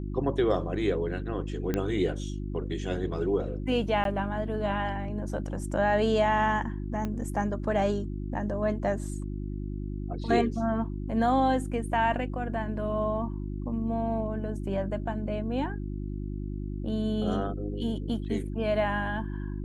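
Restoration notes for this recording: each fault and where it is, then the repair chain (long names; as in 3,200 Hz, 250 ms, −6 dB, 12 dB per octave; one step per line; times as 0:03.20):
mains hum 50 Hz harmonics 7 −34 dBFS
0:01.74: click −15 dBFS
0:04.04–0:04.05: drop-out 12 ms
0:07.05: click −20 dBFS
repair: click removal
hum removal 50 Hz, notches 7
repair the gap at 0:04.04, 12 ms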